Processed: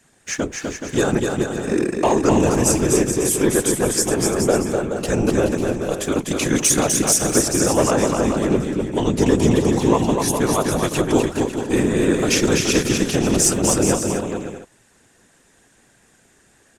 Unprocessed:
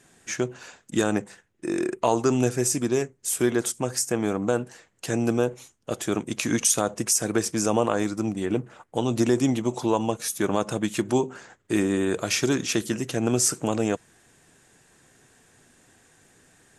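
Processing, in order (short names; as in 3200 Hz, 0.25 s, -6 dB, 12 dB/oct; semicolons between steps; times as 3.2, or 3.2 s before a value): sample leveller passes 1; whisperiser; bouncing-ball echo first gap 0.25 s, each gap 0.7×, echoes 5; gain +1.5 dB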